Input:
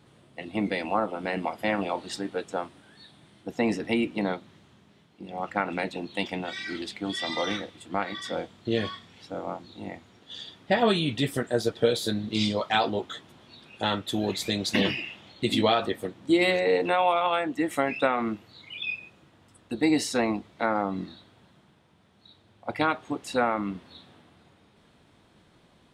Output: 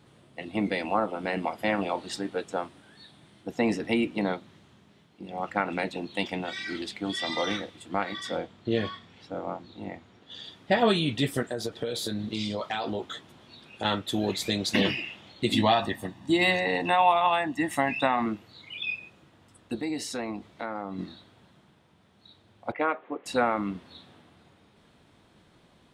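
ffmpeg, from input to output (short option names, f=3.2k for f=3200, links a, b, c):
-filter_complex "[0:a]asettb=1/sr,asplit=3[a][b][c];[a]atrim=end=8.374[d];[b]atrim=start=8.37:end=10.44,asetpts=PTS-STARTPTS,afade=t=in:d=0.004:c=qsin,afade=t=out:st=2.066:d=0.004:c=qsin,lowpass=f=3.6k:p=1[e];[c]atrim=start=10.436[f];[d][e]acrossfade=d=0.004:c1=hsin:c2=qsin[g];[g][f]acrossfade=d=0.004:c1=qsin:c2=hsin,asettb=1/sr,asplit=3[h][i][j];[h]atrim=end=11.514[k];[i]atrim=start=11.51:end=13.85,asetpts=PTS-STARTPTS,afade=t=in:d=0.004:c=qsin,afade=t=out:st=2.336:d=0.004:c=qsin,acompressor=threshold=-26dB:ratio=12:attack=3.2:release=140:knee=1:detection=peak[l];[j]atrim=start=13.846[m];[k][l]acrossfade=d=0.004:c1=hsin:c2=qsin[n];[n][m]acrossfade=d=0.004:c1=qsin:c2=hsin,asettb=1/sr,asplit=3[o][p][q];[o]atrim=end=15.554[r];[p]atrim=start=15.55:end=18.26,asetpts=PTS-STARTPTS,afade=t=in:d=0.004:c=qsin,afade=t=out:st=2.706:d=0.004:c=qsin,aecho=1:1:1.1:0.65,atrim=end_sample=119511[s];[q]atrim=start=18.256[t];[r][s]acrossfade=d=0.004:c1=hsin:c2=qsin[u];[u][t]acrossfade=d=0.004:c1=qsin:c2=hsin,asettb=1/sr,asplit=3[v][w][x];[v]atrim=end=19.794[y];[w]atrim=start=19.79:end=20.99,asetpts=PTS-STARTPTS,afade=t=in:d=0.004:c=qsin,afade=t=out:st=1.196:d=0.004:c=qsin,acompressor=threshold=-35dB:ratio=2:attack=3.2:release=140:knee=1:detection=peak[z];[x]atrim=start=20.986[aa];[y][z]acrossfade=d=0.004:c1=hsin:c2=qsin[ab];[ab][aa]acrossfade=d=0.004:c1=qsin:c2=hsin,asettb=1/sr,asplit=3[ac][ad][ae];[ac]atrim=end=22.724[af];[ad]atrim=start=22.72:end=23.26,asetpts=PTS-STARTPTS,afade=t=in:d=0.004:c=qsin,afade=t=out:st=0.536:d=0.004:c=qsin,highpass=370,equalizer=f=500:t=q:w=4:g=5,equalizer=f=850:t=q:w=4:g=-4,equalizer=f=1.5k:t=q:w=4:g=-3,lowpass=f=2.3k:w=0.5412,lowpass=f=2.3k:w=1.3066[ag];[ae]atrim=start=23.256[ah];[af][ag]acrossfade=d=0.004:c1=hsin:c2=qsin[ai];[ai][ah]acrossfade=d=0.004:c1=qsin:c2=hsin"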